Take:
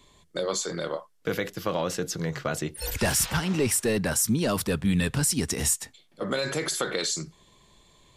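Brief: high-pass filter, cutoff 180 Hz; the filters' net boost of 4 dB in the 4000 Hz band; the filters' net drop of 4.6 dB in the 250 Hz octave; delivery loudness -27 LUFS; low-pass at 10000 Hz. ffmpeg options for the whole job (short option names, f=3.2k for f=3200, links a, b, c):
-af "highpass=180,lowpass=10k,equalizer=f=250:t=o:g=-4,equalizer=f=4k:t=o:g=5,volume=0.5dB"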